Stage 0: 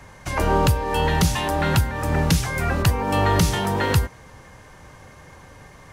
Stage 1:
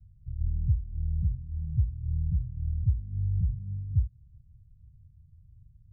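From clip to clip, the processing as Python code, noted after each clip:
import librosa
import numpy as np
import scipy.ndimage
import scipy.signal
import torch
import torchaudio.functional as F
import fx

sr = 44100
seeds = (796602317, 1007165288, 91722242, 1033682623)

y = scipy.signal.sosfilt(scipy.signal.cheby2(4, 70, 520.0, 'lowpass', fs=sr, output='sos'), x)
y = F.gain(torch.from_numpy(y), -4.0).numpy()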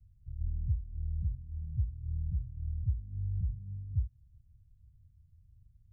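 y = fx.peak_eq(x, sr, hz=150.0, db=-5.0, octaves=0.76)
y = F.gain(torch.from_numpy(y), -5.0).numpy()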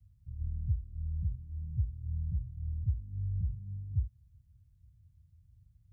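y = scipy.signal.sosfilt(scipy.signal.butter(2, 51.0, 'highpass', fs=sr, output='sos'), x)
y = F.gain(torch.from_numpy(y), 1.0).numpy()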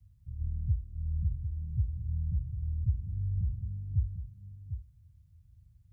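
y = x + 10.0 ** (-9.0 / 20.0) * np.pad(x, (int(748 * sr / 1000.0), 0))[:len(x)]
y = F.gain(torch.from_numpy(y), 2.0).numpy()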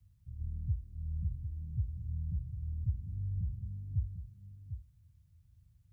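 y = fx.low_shelf(x, sr, hz=140.0, db=-7.5)
y = F.gain(torch.from_numpy(y), 1.0).numpy()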